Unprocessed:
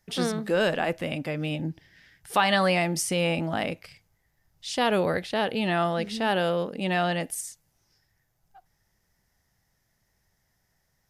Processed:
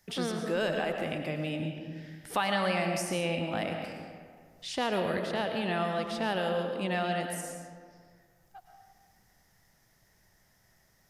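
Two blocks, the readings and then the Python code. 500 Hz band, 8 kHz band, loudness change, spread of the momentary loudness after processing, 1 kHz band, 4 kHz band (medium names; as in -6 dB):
-4.5 dB, -7.0 dB, -5.5 dB, 13 LU, -5.0 dB, -5.5 dB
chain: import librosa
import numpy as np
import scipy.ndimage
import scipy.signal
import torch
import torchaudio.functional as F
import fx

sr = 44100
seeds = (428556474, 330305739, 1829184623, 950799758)

y = fx.rev_freeverb(x, sr, rt60_s=1.4, hf_ratio=0.55, predelay_ms=70, drr_db=4.5)
y = fx.band_squash(y, sr, depth_pct=40)
y = y * 10.0 ** (-6.5 / 20.0)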